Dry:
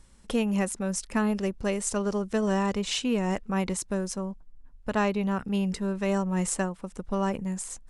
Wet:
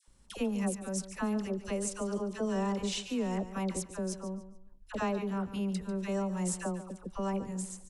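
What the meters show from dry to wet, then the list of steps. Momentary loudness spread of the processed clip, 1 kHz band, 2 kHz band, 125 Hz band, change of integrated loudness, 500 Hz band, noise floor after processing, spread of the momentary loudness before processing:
6 LU, -6.5 dB, -8.5 dB, -6.0 dB, -6.0 dB, -6.0 dB, -57 dBFS, 6 LU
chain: bell 1900 Hz -3.5 dB 1.2 oct; dispersion lows, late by 78 ms, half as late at 950 Hz; on a send: feedback echo 0.144 s, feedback 30%, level -13 dB; on the sum: gain -6 dB

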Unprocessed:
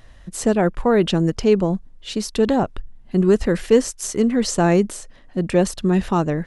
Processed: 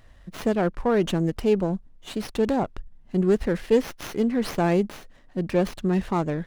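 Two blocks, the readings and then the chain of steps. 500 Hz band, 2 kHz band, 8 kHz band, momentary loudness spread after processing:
-5.0 dB, -5.0 dB, -15.0 dB, 10 LU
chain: running maximum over 5 samples; gain -5 dB

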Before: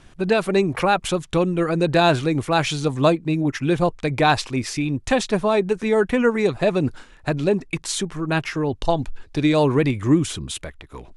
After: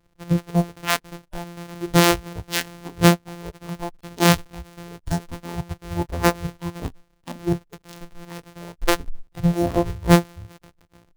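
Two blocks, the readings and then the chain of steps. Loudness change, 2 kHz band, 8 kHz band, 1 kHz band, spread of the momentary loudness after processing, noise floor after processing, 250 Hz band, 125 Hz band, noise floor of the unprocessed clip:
-1.5 dB, -2.5 dB, +1.5 dB, -3.5 dB, 22 LU, -63 dBFS, -2.5 dB, 0.0 dB, -48 dBFS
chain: sample sorter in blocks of 256 samples; spectral noise reduction 19 dB; gain +3 dB

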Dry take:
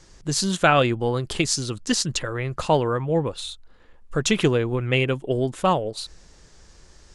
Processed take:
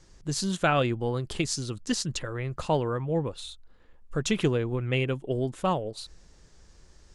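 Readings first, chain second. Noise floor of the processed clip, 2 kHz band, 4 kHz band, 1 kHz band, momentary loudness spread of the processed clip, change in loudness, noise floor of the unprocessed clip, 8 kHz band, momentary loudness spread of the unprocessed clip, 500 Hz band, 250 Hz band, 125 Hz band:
-56 dBFS, -7.5 dB, -7.5 dB, -7.0 dB, 10 LU, -6.0 dB, -52 dBFS, -7.5 dB, 10 LU, -6.0 dB, -5.0 dB, -4.0 dB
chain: low shelf 370 Hz +4 dB; gain -7.5 dB

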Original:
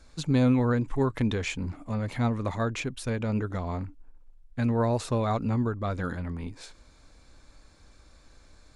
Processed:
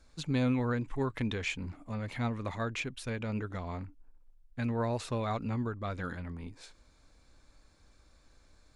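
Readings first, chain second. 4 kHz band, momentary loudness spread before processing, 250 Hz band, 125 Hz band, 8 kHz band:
-3.0 dB, 12 LU, -7.0 dB, -7.0 dB, -6.0 dB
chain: dynamic EQ 2500 Hz, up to +6 dB, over -48 dBFS, Q 0.82; gain -7 dB

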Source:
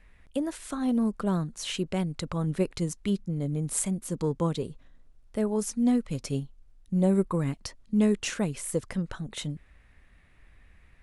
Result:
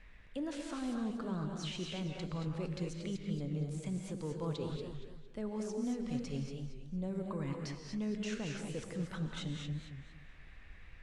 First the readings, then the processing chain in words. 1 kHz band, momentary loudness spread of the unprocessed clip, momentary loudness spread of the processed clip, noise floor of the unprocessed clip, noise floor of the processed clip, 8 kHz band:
-9.5 dB, 10 LU, 11 LU, -58 dBFS, -55 dBFS, -16.0 dB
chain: high shelf 2600 Hz +10 dB; reverse; compressor 5:1, threshold -35 dBFS, peak gain reduction 17 dB; reverse; limiter -29 dBFS, peak gain reduction 10.5 dB; air absorption 130 m; non-linear reverb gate 0.26 s rising, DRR 2.5 dB; warbling echo 0.231 s, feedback 32%, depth 151 cents, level -9 dB; gain -1 dB

